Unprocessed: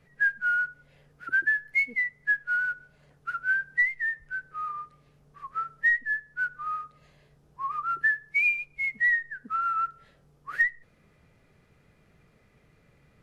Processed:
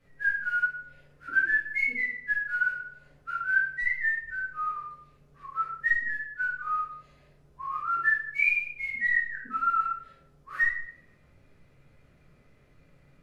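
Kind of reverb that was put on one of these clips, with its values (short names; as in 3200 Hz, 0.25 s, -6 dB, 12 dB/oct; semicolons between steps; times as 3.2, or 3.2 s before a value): shoebox room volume 130 m³, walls mixed, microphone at 2.1 m; gain -8.5 dB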